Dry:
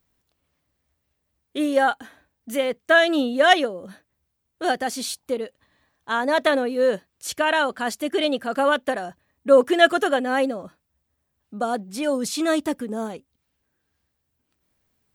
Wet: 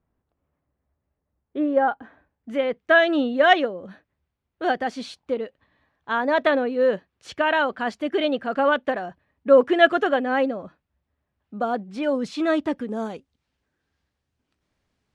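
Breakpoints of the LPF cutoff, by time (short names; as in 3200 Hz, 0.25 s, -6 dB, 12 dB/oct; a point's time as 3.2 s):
1.85 s 1200 Hz
2.81 s 2900 Hz
12.66 s 2900 Hz
13.07 s 5800 Hz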